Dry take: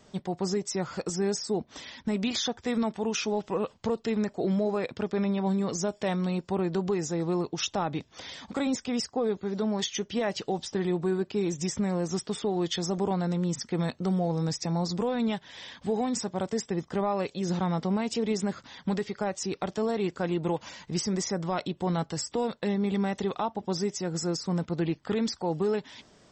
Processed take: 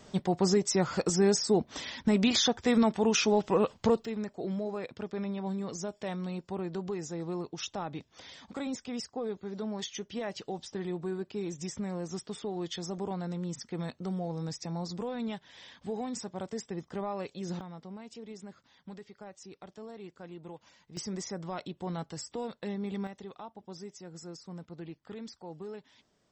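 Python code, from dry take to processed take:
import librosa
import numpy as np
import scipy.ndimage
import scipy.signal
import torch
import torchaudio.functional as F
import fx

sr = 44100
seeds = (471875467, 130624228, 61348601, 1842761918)

y = fx.gain(x, sr, db=fx.steps((0.0, 3.5), (4.05, -7.5), (17.61, -17.0), (20.97, -8.0), (23.07, -15.0)))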